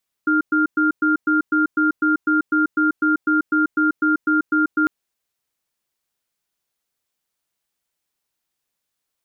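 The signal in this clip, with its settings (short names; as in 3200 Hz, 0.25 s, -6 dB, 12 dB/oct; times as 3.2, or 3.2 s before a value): cadence 308 Hz, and 1400 Hz, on 0.14 s, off 0.11 s, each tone -17 dBFS 4.60 s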